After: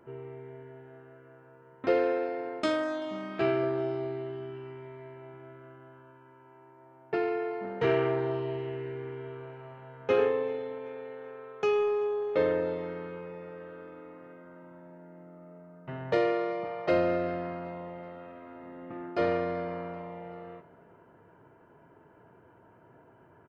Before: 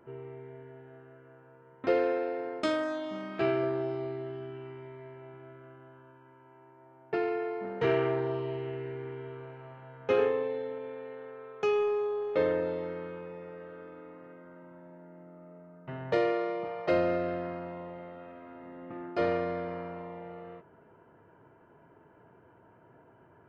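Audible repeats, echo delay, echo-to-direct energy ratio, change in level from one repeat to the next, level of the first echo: 2, 0.385 s, -22.0 dB, -6.0 dB, -23.0 dB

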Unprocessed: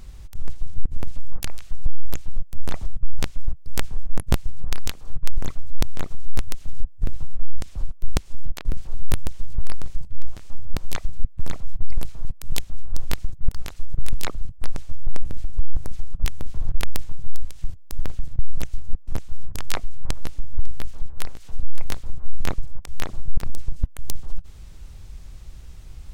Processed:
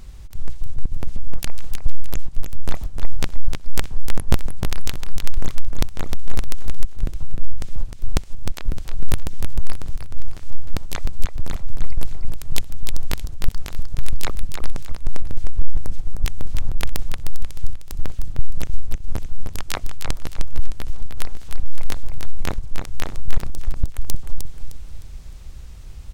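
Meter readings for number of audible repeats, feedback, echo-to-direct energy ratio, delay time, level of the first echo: 4, 33%, -5.5 dB, 0.307 s, -6.0 dB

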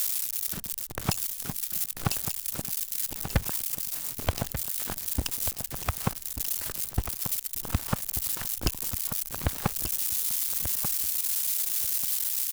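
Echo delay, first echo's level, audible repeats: 1.188 s, -10.0 dB, 2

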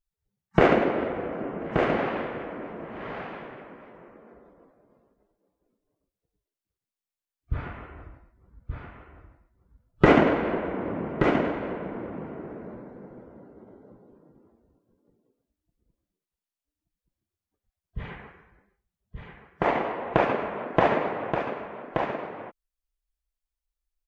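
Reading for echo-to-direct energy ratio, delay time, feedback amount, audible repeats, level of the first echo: -6.0 dB, 1.177 s, no steady repeat, 1, -6.0 dB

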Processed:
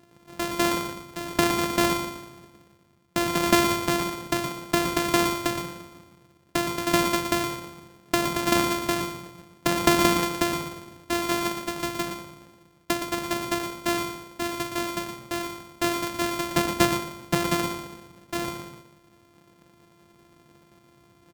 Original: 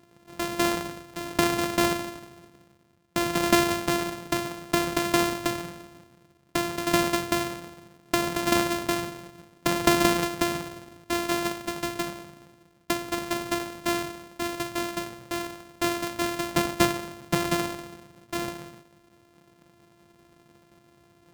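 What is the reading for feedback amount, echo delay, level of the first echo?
no steady repeat, 0.117 s, -8.0 dB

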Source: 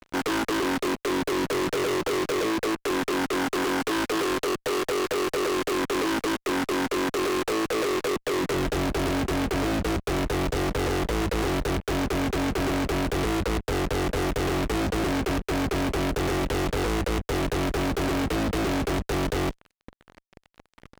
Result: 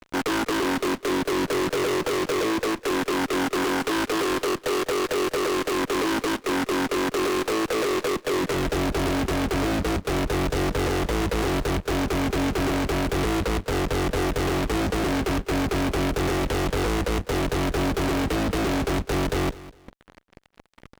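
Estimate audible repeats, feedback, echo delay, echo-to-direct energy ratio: 2, 27%, 0.203 s, -17.5 dB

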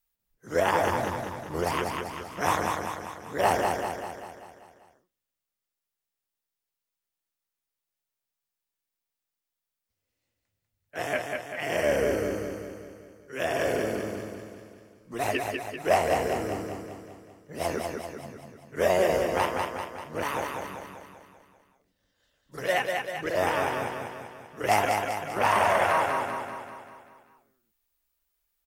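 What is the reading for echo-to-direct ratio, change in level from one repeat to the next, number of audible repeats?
-2.5 dB, -5.0 dB, 6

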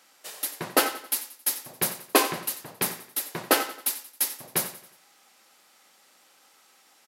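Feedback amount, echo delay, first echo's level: 44%, 90 ms, -14.5 dB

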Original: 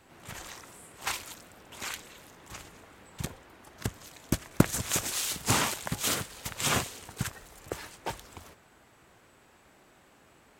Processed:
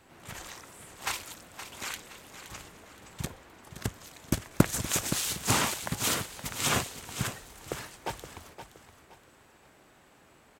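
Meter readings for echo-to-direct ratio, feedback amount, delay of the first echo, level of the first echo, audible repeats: -10.5 dB, 34%, 0.52 s, -11.0 dB, 3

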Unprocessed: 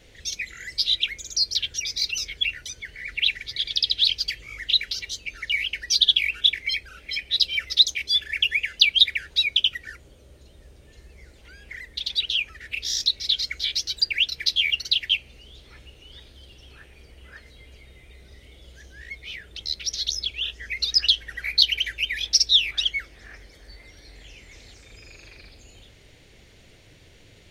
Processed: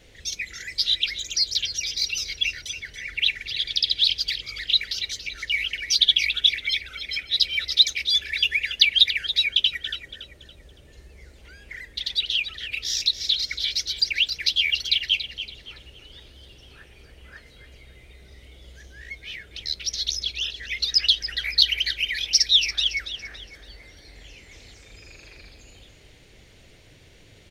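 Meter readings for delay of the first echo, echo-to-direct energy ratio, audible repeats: 0.282 s, -10.5 dB, 3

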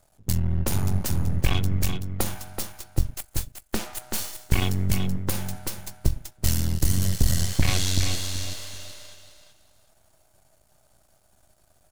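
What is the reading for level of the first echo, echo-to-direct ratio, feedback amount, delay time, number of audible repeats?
-7.0 dB, -7.0 dB, 23%, 0.38 s, 3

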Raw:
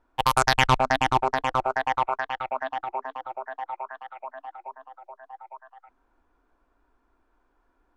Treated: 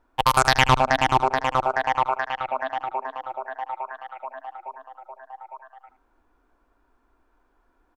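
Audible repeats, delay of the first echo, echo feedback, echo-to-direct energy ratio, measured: 1, 78 ms, no steady repeat, -13.0 dB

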